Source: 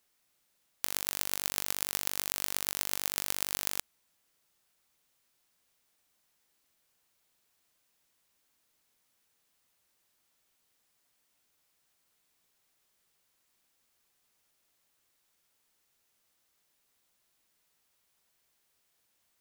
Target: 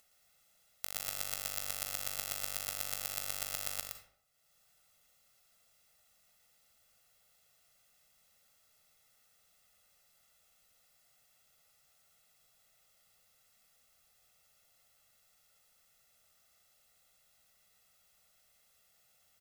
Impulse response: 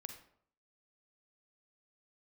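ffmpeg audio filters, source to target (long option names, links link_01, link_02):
-filter_complex "[0:a]aecho=1:1:1.5:0.88,acompressor=mode=upward:threshold=-52dB:ratio=2.5,asplit=2[link_01][link_02];[1:a]atrim=start_sample=2205,adelay=115[link_03];[link_02][link_03]afir=irnorm=-1:irlink=0,volume=1.5dB[link_04];[link_01][link_04]amix=inputs=2:normalize=0,volume=-9dB"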